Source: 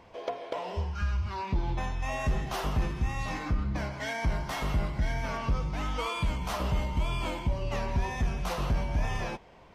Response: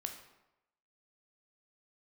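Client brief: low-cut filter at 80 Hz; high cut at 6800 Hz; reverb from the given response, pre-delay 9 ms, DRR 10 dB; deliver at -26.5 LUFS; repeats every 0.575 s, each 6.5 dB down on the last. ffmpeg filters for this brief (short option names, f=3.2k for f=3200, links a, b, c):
-filter_complex "[0:a]highpass=80,lowpass=6.8k,aecho=1:1:575|1150|1725|2300|2875|3450:0.473|0.222|0.105|0.0491|0.0231|0.0109,asplit=2[a][b];[1:a]atrim=start_sample=2205,adelay=9[c];[b][c]afir=irnorm=-1:irlink=0,volume=-9dB[d];[a][d]amix=inputs=2:normalize=0,volume=6.5dB"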